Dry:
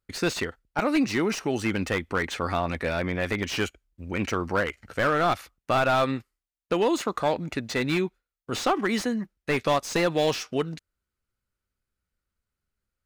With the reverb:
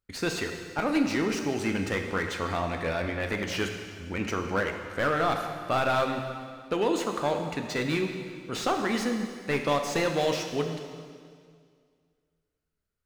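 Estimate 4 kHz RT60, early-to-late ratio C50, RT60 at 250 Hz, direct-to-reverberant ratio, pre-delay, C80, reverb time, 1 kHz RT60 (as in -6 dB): 2.0 s, 5.5 dB, 2.2 s, 4.0 dB, 10 ms, 6.5 dB, 2.1 s, 2.0 s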